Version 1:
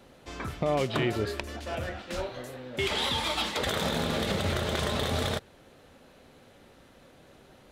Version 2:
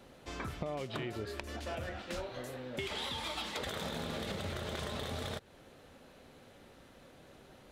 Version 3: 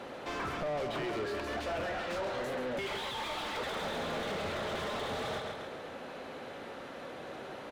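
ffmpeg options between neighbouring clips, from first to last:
-af "acompressor=threshold=0.02:ratio=6,volume=0.794"
-filter_complex "[0:a]aecho=1:1:136|272|408|544|680:0.316|0.139|0.0612|0.0269|0.0119,asplit=2[s0][s1];[s1]highpass=f=720:p=1,volume=31.6,asoftclip=type=tanh:threshold=0.0794[s2];[s0][s2]amix=inputs=2:normalize=0,lowpass=f=1300:p=1,volume=0.501,volume=0.631"

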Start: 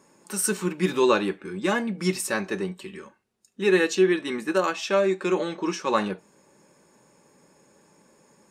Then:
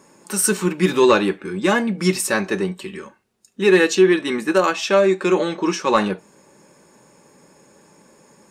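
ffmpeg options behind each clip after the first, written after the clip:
-af "acontrast=78"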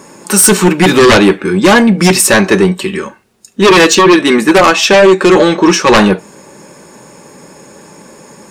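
-af "aeval=exprs='0.708*sin(PI/2*3.16*val(0)/0.708)':c=same,volume=1.19"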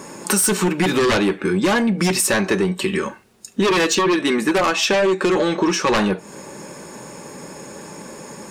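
-af "acompressor=threshold=0.141:ratio=5"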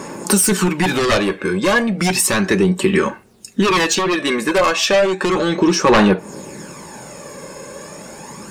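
-af "aphaser=in_gain=1:out_gain=1:delay=1.9:decay=0.45:speed=0.33:type=sinusoidal,volume=1.19"

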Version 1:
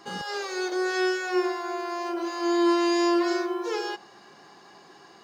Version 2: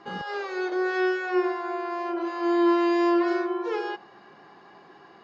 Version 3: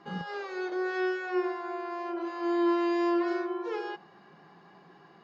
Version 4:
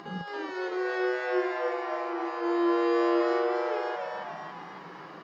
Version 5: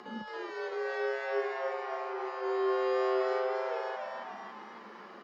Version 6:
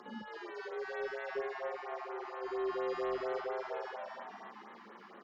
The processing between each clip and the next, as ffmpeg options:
-af "lowpass=2600,volume=1.12"
-af "equalizer=f=170:t=o:w=0.41:g=12.5,volume=0.531"
-filter_complex "[0:a]acompressor=mode=upward:threshold=0.0126:ratio=2.5,asplit=2[s0][s1];[s1]asplit=8[s2][s3][s4][s5][s6][s7][s8][s9];[s2]adelay=277,afreqshift=130,volume=0.668[s10];[s3]adelay=554,afreqshift=260,volume=0.376[s11];[s4]adelay=831,afreqshift=390,volume=0.209[s12];[s5]adelay=1108,afreqshift=520,volume=0.117[s13];[s6]adelay=1385,afreqshift=650,volume=0.0661[s14];[s7]adelay=1662,afreqshift=780,volume=0.0367[s15];[s8]adelay=1939,afreqshift=910,volume=0.0207[s16];[s9]adelay=2216,afreqshift=1040,volume=0.0115[s17];[s10][s11][s12][s13][s14][s15][s16][s17]amix=inputs=8:normalize=0[s18];[s0][s18]amix=inputs=2:normalize=0"
-af "afreqshift=42,volume=0.596"
-af "asoftclip=type=tanh:threshold=0.075,afftfilt=real='re*(1-between(b*sr/1024,440*pow(6200/440,0.5+0.5*sin(2*PI*4.3*pts/sr))/1.41,440*pow(6200/440,0.5+0.5*sin(2*PI*4.3*pts/sr))*1.41))':imag='im*(1-between(b*sr/1024,440*pow(6200/440,0.5+0.5*sin(2*PI*4.3*pts/sr))/1.41,440*pow(6200/440,0.5+0.5*sin(2*PI*4.3*pts/sr))*1.41))':win_size=1024:overlap=0.75,volume=0.631"

